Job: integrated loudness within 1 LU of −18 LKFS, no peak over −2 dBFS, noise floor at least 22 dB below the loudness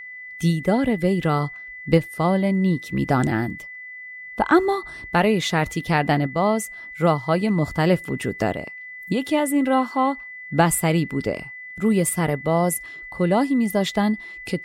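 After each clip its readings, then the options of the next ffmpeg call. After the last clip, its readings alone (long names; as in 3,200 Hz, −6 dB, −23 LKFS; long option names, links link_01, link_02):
interfering tone 2,000 Hz; level of the tone −35 dBFS; integrated loudness −22.0 LKFS; sample peak −4.5 dBFS; target loudness −18.0 LKFS
→ -af "bandreject=frequency=2000:width=30"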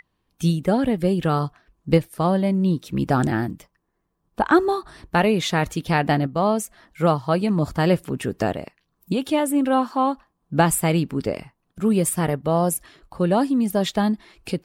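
interfering tone none found; integrated loudness −22.0 LKFS; sample peak −4.5 dBFS; target loudness −18.0 LKFS
→ -af "volume=4dB,alimiter=limit=-2dB:level=0:latency=1"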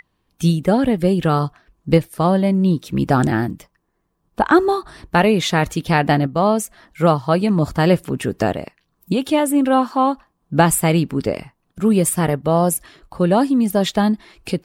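integrated loudness −18.0 LKFS; sample peak −2.0 dBFS; background noise floor −70 dBFS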